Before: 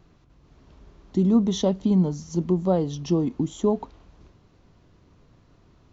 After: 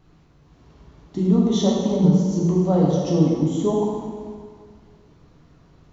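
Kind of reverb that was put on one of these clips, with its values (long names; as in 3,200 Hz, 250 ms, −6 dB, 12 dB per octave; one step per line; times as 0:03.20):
dense smooth reverb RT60 1.9 s, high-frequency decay 0.75×, DRR −4.5 dB
level −2 dB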